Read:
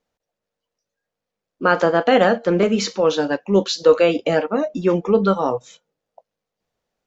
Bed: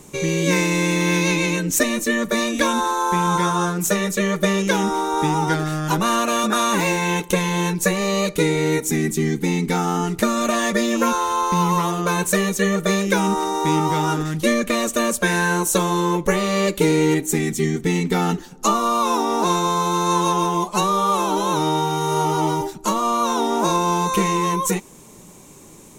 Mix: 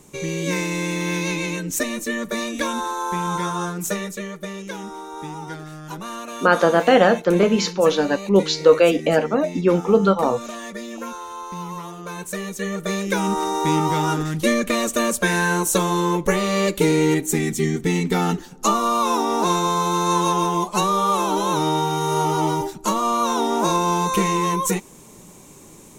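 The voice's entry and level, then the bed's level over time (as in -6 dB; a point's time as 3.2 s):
4.80 s, +0.5 dB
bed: 3.94 s -5 dB
4.37 s -13 dB
12 s -13 dB
13.46 s -0.5 dB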